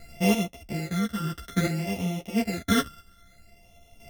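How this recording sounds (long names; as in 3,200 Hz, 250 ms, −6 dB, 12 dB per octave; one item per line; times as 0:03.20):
a buzz of ramps at a fixed pitch in blocks of 64 samples
phaser sweep stages 12, 0.59 Hz, lowest notch 730–1,500 Hz
chopped level 0.75 Hz, depth 60%, duty 25%
a shimmering, thickened sound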